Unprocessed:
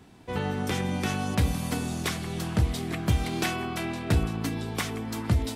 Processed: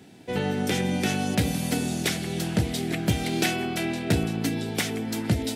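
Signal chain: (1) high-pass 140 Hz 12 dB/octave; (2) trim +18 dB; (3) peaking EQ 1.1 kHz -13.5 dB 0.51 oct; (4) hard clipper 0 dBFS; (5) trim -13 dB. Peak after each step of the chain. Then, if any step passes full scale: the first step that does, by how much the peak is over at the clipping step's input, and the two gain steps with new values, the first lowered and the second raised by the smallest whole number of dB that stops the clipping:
-13.0 dBFS, +5.0 dBFS, +4.5 dBFS, 0.0 dBFS, -13.0 dBFS; step 2, 4.5 dB; step 2 +13 dB, step 5 -8 dB

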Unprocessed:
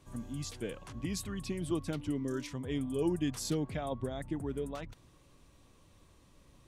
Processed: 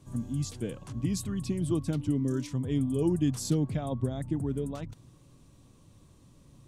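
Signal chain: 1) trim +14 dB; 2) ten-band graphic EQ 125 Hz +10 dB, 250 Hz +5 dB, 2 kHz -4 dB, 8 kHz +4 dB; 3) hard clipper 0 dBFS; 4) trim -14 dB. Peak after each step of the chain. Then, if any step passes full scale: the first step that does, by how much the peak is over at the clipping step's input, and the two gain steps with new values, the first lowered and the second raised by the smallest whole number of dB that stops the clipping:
-6.5 dBFS, -2.5 dBFS, -2.5 dBFS, -16.5 dBFS; nothing clips

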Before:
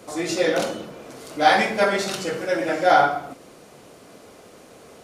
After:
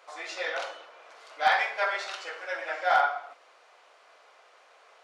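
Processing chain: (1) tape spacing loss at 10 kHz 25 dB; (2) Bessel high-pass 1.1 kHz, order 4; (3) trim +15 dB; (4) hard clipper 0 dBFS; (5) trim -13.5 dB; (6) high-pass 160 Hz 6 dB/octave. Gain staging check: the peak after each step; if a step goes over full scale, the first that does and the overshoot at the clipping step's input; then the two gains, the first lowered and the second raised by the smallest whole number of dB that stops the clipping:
-5.5 dBFS, -11.5 dBFS, +3.5 dBFS, 0.0 dBFS, -13.5 dBFS, -12.5 dBFS; step 3, 3.5 dB; step 3 +11 dB, step 5 -9.5 dB

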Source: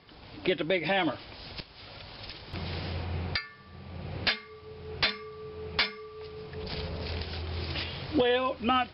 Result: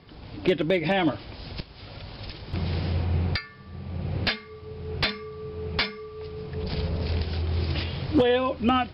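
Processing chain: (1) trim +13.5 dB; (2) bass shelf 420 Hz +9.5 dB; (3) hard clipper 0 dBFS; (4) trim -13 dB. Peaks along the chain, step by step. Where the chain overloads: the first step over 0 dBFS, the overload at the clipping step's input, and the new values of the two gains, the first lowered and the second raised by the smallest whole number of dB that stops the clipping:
+1.0 dBFS, +4.5 dBFS, 0.0 dBFS, -13.0 dBFS; step 1, 4.5 dB; step 1 +8.5 dB, step 4 -8 dB

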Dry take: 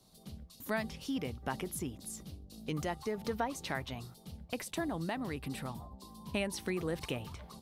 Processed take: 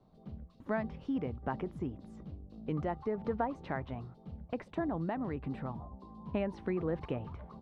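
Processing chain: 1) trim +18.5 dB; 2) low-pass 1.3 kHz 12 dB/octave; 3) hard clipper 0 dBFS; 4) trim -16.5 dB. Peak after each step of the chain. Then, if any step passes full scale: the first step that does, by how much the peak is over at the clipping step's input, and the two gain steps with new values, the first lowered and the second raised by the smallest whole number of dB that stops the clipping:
-3.0 dBFS, -3.5 dBFS, -3.5 dBFS, -20.0 dBFS; nothing clips

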